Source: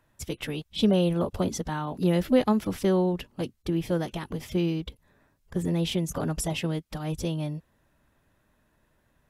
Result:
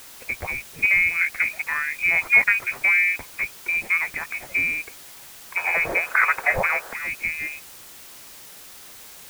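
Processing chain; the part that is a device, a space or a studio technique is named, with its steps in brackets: scrambled radio voice (BPF 360–3100 Hz; inverted band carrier 2700 Hz; white noise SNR 18 dB); 5.57–6.93 band shelf 830 Hz +14.5 dB 2.4 oct; gain +8 dB

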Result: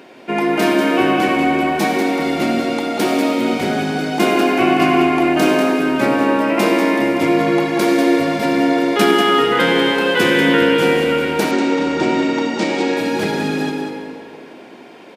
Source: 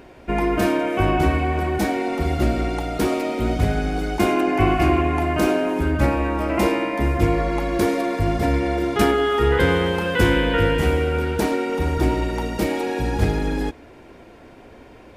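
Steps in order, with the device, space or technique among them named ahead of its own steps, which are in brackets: PA in a hall (HPF 180 Hz 24 dB/oct; bell 3600 Hz +5 dB 1.5 oct; echo 0.191 s -7.5 dB; reverb RT60 2.4 s, pre-delay 63 ms, DRR 4.5 dB); 11.51–12.97 steep low-pass 7800 Hz 36 dB/oct; gain +3 dB

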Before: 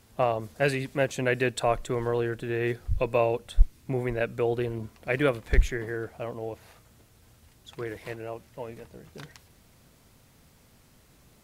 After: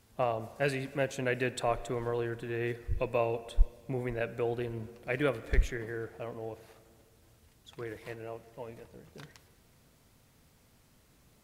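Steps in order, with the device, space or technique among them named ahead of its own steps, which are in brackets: filtered reverb send (on a send: HPF 160 Hz + LPF 3500 Hz + reverb RT60 2.1 s, pre-delay 4 ms, DRR 14.5 dB); on the sum: gain -5.5 dB

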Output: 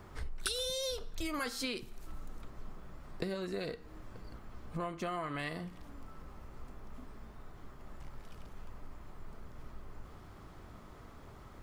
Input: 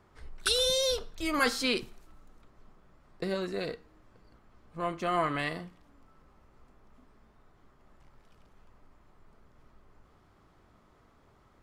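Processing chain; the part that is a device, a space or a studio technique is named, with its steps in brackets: ASMR close-microphone chain (low shelf 150 Hz +5 dB; compressor 8:1, threshold -43 dBFS, peak gain reduction 20.5 dB; high shelf 11000 Hz +7.5 dB); gain +8 dB

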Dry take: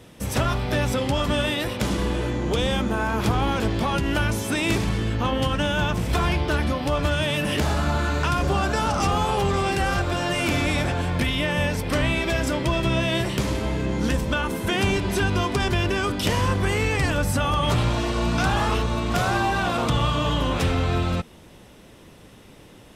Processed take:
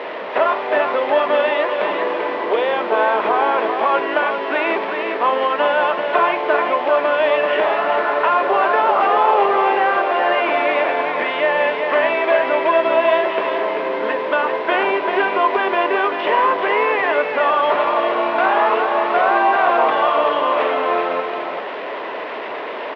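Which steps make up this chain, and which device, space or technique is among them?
4.06–5.65 steep high-pass 160 Hz 36 dB/oct; digital answering machine (BPF 330–3100 Hz; delta modulation 32 kbps, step -29.5 dBFS; speaker cabinet 380–3000 Hz, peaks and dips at 420 Hz +6 dB, 640 Hz +9 dB, 1000 Hz +8 dB, 1900 Hz +4 dB); echo 0.39 s -6 dB; gain +4.5 dB

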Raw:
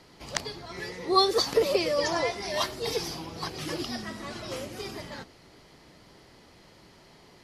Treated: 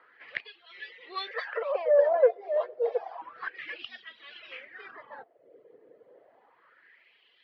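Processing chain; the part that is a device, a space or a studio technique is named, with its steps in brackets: wah-wah guitar rig (wah 0.3 Hz 450–3200 Hz, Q 3.7; tube stage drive 25 dB, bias 0.25; speaker cabinet 110–3400 Hz, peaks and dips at 180 Hz -8 dB, 480 Hz +8 dB, 880 Hz -4 dB, 1700 Hz +7 dB); reverb removal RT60 0.75 s; 1.27–3.22 resonant low shelf 410 Hz -13.5 dB, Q 3; gain +6 dB

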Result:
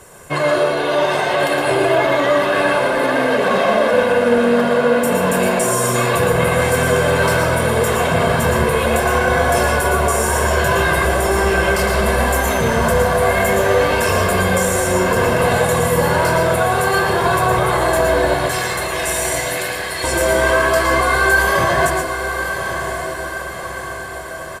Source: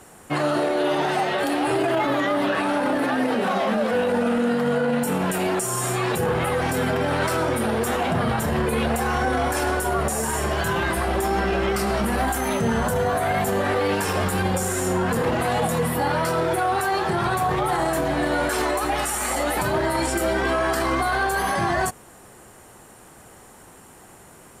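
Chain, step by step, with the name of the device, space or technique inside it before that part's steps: 18.34–20.04 elliptic high-pass 1700 Hz; microphone above a desk (comb 1.9 ms, depth 55%; reverb RT60 0.40 s, pre-delay 0.108 s, DRR 1.5 dB); diffused feedback echo 1.107 s, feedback 57%, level -8 dB; gain +3.5 dB

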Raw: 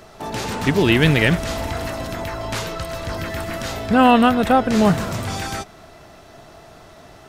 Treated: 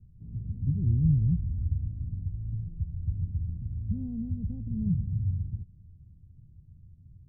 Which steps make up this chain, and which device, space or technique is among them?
the neighbour's flat through the wall (LPF 150 Hz 24 dB/oct; bell 85 Hz +7 dB 0.62 oct); gain -3 dB

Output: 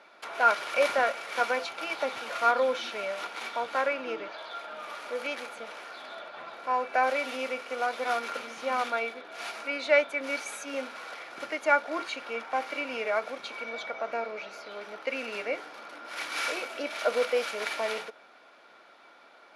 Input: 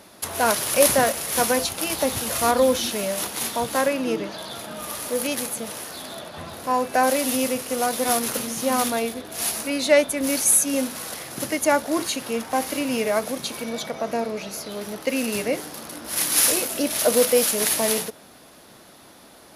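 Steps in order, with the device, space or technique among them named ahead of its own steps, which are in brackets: tin-can telephone (BPF 530–3000 Hz; small resonant body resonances 1400/2300 Hz, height 13 dB, ringing for 50 ms); 4.28–4.73 HPF 280 Hz 12 dB/oct; gain -4.5 dB

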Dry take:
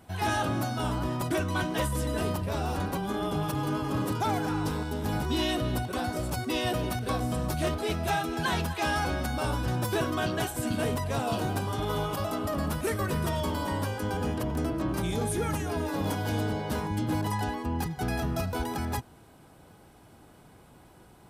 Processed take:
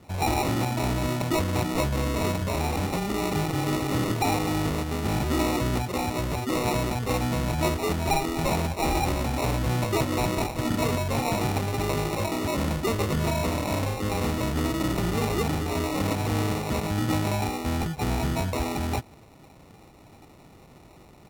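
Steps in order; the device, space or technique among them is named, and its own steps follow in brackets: crushed at another speed (playback speed 1.25×; sample-and-hold 22×; playback speed 0.8×); gain +3.5 dB

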